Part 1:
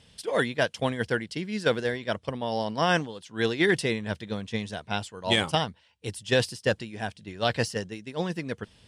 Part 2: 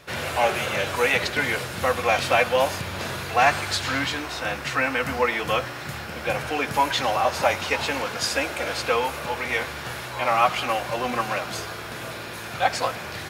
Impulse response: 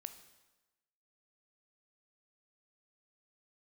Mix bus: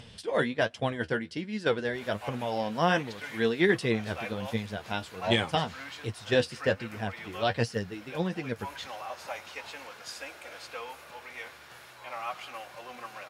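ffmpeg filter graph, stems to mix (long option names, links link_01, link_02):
-filter_complex "[0:a]lowpass=frequency=3800:poles=1,acompressor=mode=upward:threshold=-38dB:ratio=2.5,flanger=delay=8.3:depth=5:regen=39:speed=1.3:shape=sinusoidal,volume=1.5dB,asplit=3[link_01][link_02][link_03];[link_02]volume=-18.5dB[link_04];[1:a]lowshelf=frequency=330:gain=-10,adelay=1850,volume=-17.5dB,asplit=2[link_05][link_06];[link_06]volume=-7.5dB[link_07];[link_03]apad=whole_len=667906[link_08];[link_05][link_08]sidechaincompress=threshold=-36dB:ratio=8:attack=7.2:release=161[link_09];[2:a]atrim=start_sample=2205[link_10];[link_04][link_07]amix=inputs=2:normalize=0[link_11];[link_11][link_10]afir=irnorm=-1:irlink=0[link_12];[link_01][link_09][link_12]amix=inputs=3:normalize=0"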